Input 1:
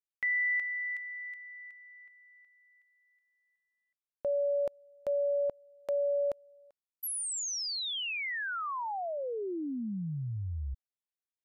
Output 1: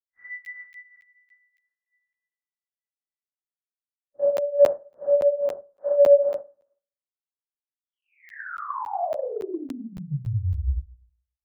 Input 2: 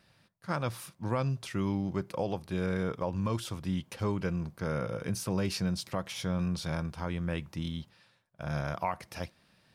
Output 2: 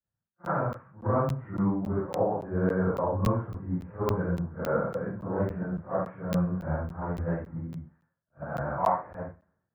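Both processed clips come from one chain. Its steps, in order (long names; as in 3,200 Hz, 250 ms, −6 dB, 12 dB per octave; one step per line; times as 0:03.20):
random phases in long frames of 200 ms
Butterworth low-pass 1,700 Hz 48 dB per octave
in parallel at +0.5 dB: downward compressor, threshold −39 dBFS
on the sum: four-comb reverb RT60 0.93 s, combs from 29 ms, DRR 16 dB
dynamic equaliser 680 Hz, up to +5 dB, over −42 dBFS, Q 1.1
regular buffer underruns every 0.28 s, samples 512, zero, from 0:00.45
multiband upward and downward expander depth 100%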